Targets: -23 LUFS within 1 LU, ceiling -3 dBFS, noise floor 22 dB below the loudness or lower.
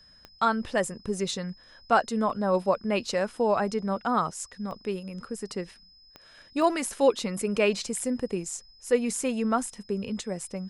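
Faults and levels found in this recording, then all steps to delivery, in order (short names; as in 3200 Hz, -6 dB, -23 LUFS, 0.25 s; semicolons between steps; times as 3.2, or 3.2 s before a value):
clicks 4; steady tone 5100 Hz; tone level -54 dBFS; loudness -28.0 LUFS; peak -9.5 dBFS; loudness target -23.0 LUFS
-> de-click; notch 5100 Hz, Q 30; gain +5 dB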